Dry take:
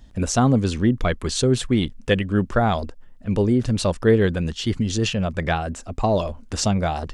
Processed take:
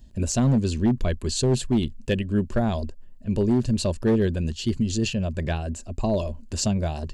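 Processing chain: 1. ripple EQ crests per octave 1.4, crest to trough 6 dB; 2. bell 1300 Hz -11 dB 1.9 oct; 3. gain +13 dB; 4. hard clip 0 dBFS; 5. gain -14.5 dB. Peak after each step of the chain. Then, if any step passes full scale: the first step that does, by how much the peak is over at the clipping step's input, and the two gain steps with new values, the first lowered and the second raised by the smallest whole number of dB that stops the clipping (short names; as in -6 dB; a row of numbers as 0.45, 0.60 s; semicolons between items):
-4.5, -7.0, +6.0, 0.0, -14.5 dBFS; step 3, 6.0 dB; step 3 +7 dB, step 5 -8.5 dB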